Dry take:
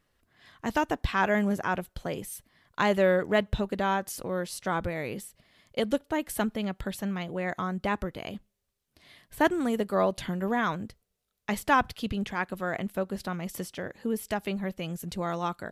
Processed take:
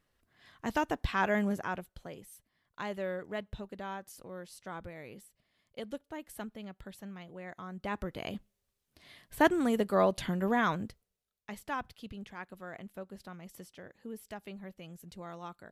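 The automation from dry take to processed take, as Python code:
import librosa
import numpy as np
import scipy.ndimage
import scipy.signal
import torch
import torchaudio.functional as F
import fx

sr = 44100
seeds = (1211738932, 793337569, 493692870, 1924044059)

y = fx.gain(x, sr, db=fx.line((1.46, -4.0), (2.2, -13.5), (7.61, -13.5), (8.23, -1.0), (10.85, -1.0), (11.5, -13.5)))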